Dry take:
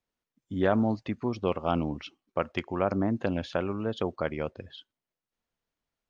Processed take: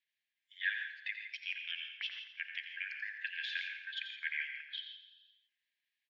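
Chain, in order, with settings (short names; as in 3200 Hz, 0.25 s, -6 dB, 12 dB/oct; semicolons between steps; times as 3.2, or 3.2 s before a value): bin magnitudes rounded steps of 15 dB; Chebyshev high-pass 1600 Hz, order 10; gate -55 dBFS, range -10 dB; high shelf 4600 Hz +12 dB; limiter -29.5 dBFS, peak gain reduction 11.5 dB; air absorption 480 m; on a send: feedback echo 86 ms, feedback 53%, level -9.5 dB; on the sum: non-linear reverb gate 0.18 s rising, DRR 6 dB; mismatched tape noise reduction encoder only; gain +11.5 dB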